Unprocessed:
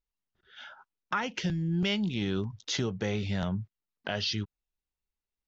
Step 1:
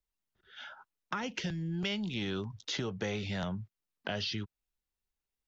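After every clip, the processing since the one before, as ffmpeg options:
ffmpeg -i in.wav -filter_complex "[0:a]acrossover=split=94|480|4000[link_01][link_02][link_03][link_04];[link_01]acompressor=threshold=-52dB:ratio=4[link_05];[link_02]acompressor=threshold=-36dB:ratio=4[link_06];[link_03]acompressor=threshold=-35dB:ratio=4[link_07];[link_04]acompressor=threshold=-44dB:ratio=4[link_08];[link_05][link_06][link_07][link_08]amix=inputs=4:normalize=0" out.wav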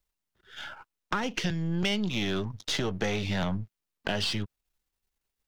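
ffmpeg -i in.wav -af "aeval=exprs='if(lt(val(0),0),0.447*val(0),val(0))':channel_layout=same,volume=8.5dB" out.wav

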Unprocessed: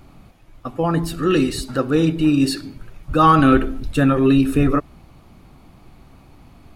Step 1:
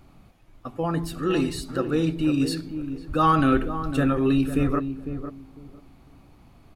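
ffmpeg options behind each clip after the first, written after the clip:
ffmpeg -i in.wav -filter_complex "[0:a]asplit=2[link_01][link_02];[link_02]adelay=502,lowpass=frequency=820:poles=1,volume=-8.5dB,asplit=2[link_03][link_04];[link_04]adelay=502,lowpass=frequency=820:poles=1,volume=0.22,asplit=2[link_05][link_06];[link_06]adelay=502,lowpass=frequency=820:poles=1,volume=0.22[link_07];[link_01][link_03][link_05][link_07]amix=inputs=4:normalize=0,volume=-6.5dB" out.wav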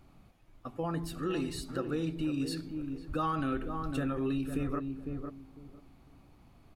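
ffmpeg -i in.wav -af "acompressor=threshold=-23dB:ratio=4,volume=-6.5dB" out.wav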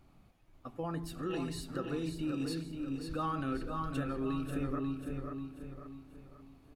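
ffmpeg -i in.wav -af "aecho=1:1:539|1078|1617|2156|2695:0.473|0.189|0.0757|0.0303|0.0121,volume=-3.5dB" out.wav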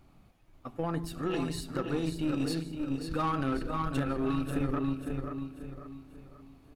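ffmpeg -i in.wav -af "aeval=exprs='0.075*(cos(1*acos(clip(val(0)/0.075,-1,1)))-cos(1*PI/2))+0.015*(cos(3*acos(clip(val(0)/0.075,-1,1)))-cos(3*PI/2))+0.00596*(cos(4*acos(clip(val(0)/0.075,-1,1)))-cos(4*PI/2))+0.0168*(cos(5*acos(clip(val(0)/0.075,-1,1)))-cos(5*PI/2))+0.00841*(cos(7*acos(clip(val(0)/0.075,-1,1)))-cos(7*PI/2))':channel_layout=same,volume=5.5dB" out.wav

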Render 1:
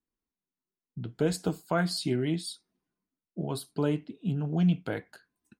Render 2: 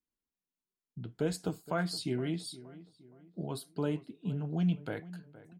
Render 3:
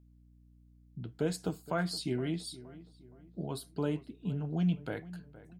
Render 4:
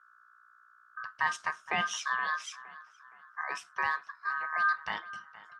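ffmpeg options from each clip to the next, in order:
ffmpeg -i in.wav -filter_complex "[0:a]asplit=2[link_01][link_02];[link_02]adelay=468,lowpass=frequency=1800:poles=1,volume=-17dB,asplit=2[link_03][link_04];[link_04]adelay=468,lowpass=frequency=1800:poles=1,volume=0.42,asplit=2[link_05][link_06];[link_06]adelay=468,lowpass=frequency=1800:poles=1,volume=0.42,asplit=2[link_07][link_08];[link_08]adelay=468,lowpass=frequency=1800:poles=1,volume=0.42[link_09];[link_01][link_03][link_05][link_07][link_09]amix=inputs=5:normalize=0,volume=-5dB" out.wav
ffmpeg -i in.wav -af "aeval=exprs='val(0)+0.00112*(sin(2*PI*60*n/s)+sin(2*PI*2*60*n/s)/2+sin(2*PI*3*60*n/s)/3+sin(2*PI*4*60*n/s)/4+sin(2*PI*5*60*n/s)/5)':channel_layout=same" out.wav
ffmpeg -i in.wav -af "aeval=exprs='val(0)*sin(2*PI*1400*n/s)':channel_layout=same,highpass=140,equalizer=frequency=280:width_type=q:width=4:gain=-10,equalizer=frequency=1400:width_type=q:width=4:gain=-4,equalizer=frequency=5500:width_type=q:width=4:gain=4,lowpass=frequency=7300:width=0.5412,lowpass=frequency=7300:width=1.3066,volume=6dB" -ar 48000 -c:a libopus -b:a 32k out.opus

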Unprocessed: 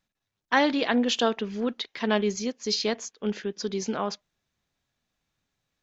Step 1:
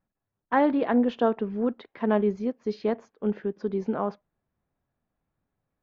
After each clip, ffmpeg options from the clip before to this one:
ffmpeg -i in.wav -af "lowpass=1100,volume=2dB" out.wav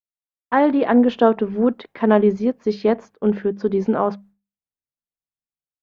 ffmpeg -i in.wav -af "agate=range=-33dB:threshold=-50dB:ratio=3:detection=peak,bandreject=frequency=50:width_type=h:width=6,bandreject=frequency=100:width_type=h:width=6,bandreject=frequency=150:width_type=h:width=6,bandreject=frequency=200:width_type=h:width=6,dynaudnorm=framelen=300:gausssize=5:maxgain=5dB,volume=4dB" out.wav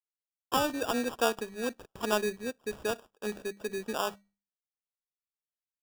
ffmpeg -i in.wav -filter_complex "[0:a]acrossover=split=1600[link_01][link_02];[link_02]acrusher=bits=7:mix=0:aa=0.000001[link_03];[link_01][link_03]amix=inputs=2:normalize=0,equalizer=frequency=150:width=0.43:gain=-13.5,acrusher=samples=21:mix=1:aa=0.000001,volume=-8dB" out.wav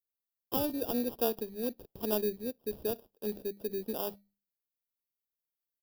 ffmpeg -i in.wav -af "firequalizer=gain_entry='entry(410,0);entry(1300,-18);entry(4500,-3);entry(7000,-17);entry(12000,7)':delay=0.05:min_phase=1" out.wav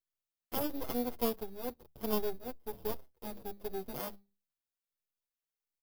ffmpeg -i in.wav -filter_complex "[0:a]equalizer=frequency=78:width=5.6:gain=10.5,aeval=exprs='max(val(0),0)':channel_layout=same,asplit=2[link_01][link_02];[link_02]adelay=7,afreqshift=-1.4[link_03];[link_01][link_03]amix=inputs=2:normalize=1,volume=2.5dB" out.wav

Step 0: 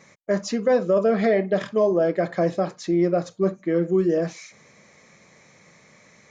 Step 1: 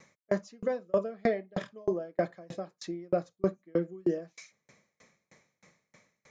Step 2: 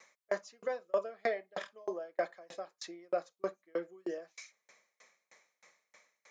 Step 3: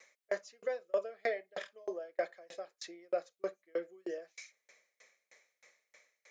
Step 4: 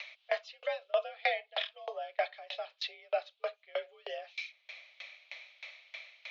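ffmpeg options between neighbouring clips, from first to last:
ffmpeg -i in.wav -af "aeval=exprs='val(0)*pow(10,-34*if(lt(mod(3.2*n/s,1),2*abs(3.2)/1000),1-mod(3.2*n/s,1)/(2*abs(3.2)/1000),(mod(3.2*n/s,1)-2*abs(3.2)/1000)/(1-2*abs(3.2)/1000))/20)':channel_layout=same,volume=-3dB" out.wav
ffmpeg -i in.wav -af "highpass=630" out.wav
ffmpeg -i in.wav -af "equalizer=frequency=125:width_type=o:width=1:gain=-8,equalizer=frequency=250:width_type=o:width=1:gain=-5,equalizer=frequency=500:width_type=o:width=1:gain=4,equalizer=frequency=1000:width_type=o:width=1:gain=-8,equalizer=frequency=2000:width_type=o:width=1:gain=3,volume=-1dB" out.wav
ffmpeg -i in.wav -af "aexciter=amount=4.9:drive=8.4:freq=2600,acompressor=mode=upward:threshold=-33dB:ratio=2.5,highpass=frequency=540:width_type=q:width=0.5412,highpass=frequency=540:width_type=q:width=1.307,lowpass=frequency=3400:width_type=q:width=0.5176,lowpass=frequency=3400:width_type=q:width=0.7071,lowpass=frequency=3400:width_type=q:width=1.932,afreqshift=54,volume=4dB" out.wav

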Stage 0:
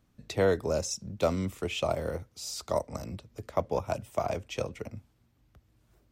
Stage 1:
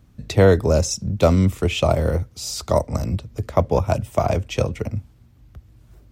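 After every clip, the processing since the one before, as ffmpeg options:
ffmpeg -i in.wav -af "equalizer=frequency=64:width=0.39:gain=10,volume=9dB" out.wav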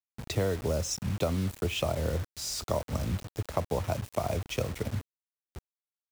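ffmpeg -i in.wav -af "acompressor=threshold=-20dB:ratio=5,acrusher=bits=5:mix=0:aa=0.000001,volume=-6dB" out.wav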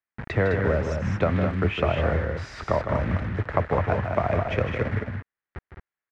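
ffmpeg -i in.wav -filter_complex "[0:a]lowpass=frequency=1800:width_type=q:width=3,asplit=2[link_01][link_02];[link_02]aecho=0:1:157.4|209.9:0.398|0.501[link_03];[link_01][link_03]amix=inputs=2:normalize=0,volume=5dB" out.wav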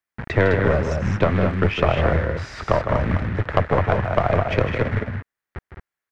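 ffmpeg -i in.wav -af "aeval=exprs='(tanh(5.01*val(0)+0.75)-tanh(0.75))/5.01':channel_layout=same,volume=8.5dB" out.wav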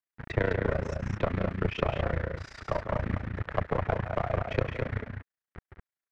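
ffmpeg -i in.wav -af "tremolo=f=29:d=0.919,volume=-6.5dB" out.wav

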